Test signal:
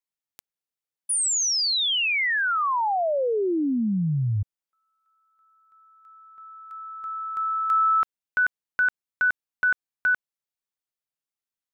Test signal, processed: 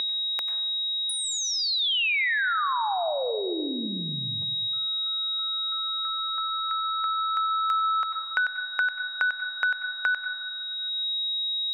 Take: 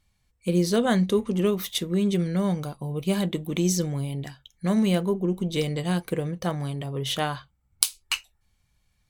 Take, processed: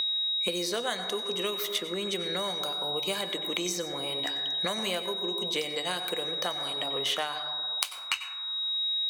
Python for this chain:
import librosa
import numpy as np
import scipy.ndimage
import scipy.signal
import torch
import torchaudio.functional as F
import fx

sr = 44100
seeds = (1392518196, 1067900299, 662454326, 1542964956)

p1 = scipy.signal.sosfilt(scipy.signal.butter(2, 640.0, 'highpass', fs=sr, output='sos'), x)
p2 = fx.peak_eq(p1, sr, hz=11000.0, db=-5.0, octaves=0.23)
p3 = p2 + 10.0 ** (-36.0 / 20.0) * np.sin(2.0 * np.pi * 3800.0 * np.arange(len(p2)) / sr)
p4 = p3 + fx.echo_single(p3, sr, ms=95, db=-20.5, dry=0)
p5 = fx.rev_plate(p4, sr, seeds[0], rt60_s=0.97, hf_ratio=0.25, predelay_ms=80, drr_db=9.5)
y = fx.band_squash(p5, sr, depth_pct=100)